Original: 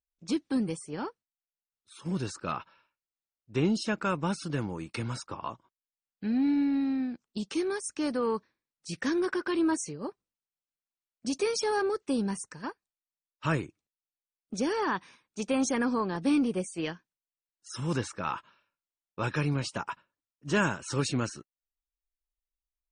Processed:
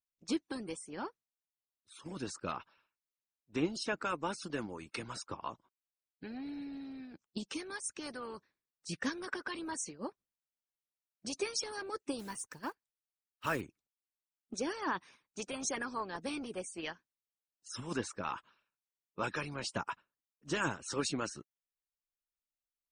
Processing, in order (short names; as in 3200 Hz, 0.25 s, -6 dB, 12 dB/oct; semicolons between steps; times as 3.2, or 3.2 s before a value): 12.19–13.62 block floating point 5-bit; harmonic-percussive split harmonic -15 dB; gain -2 dB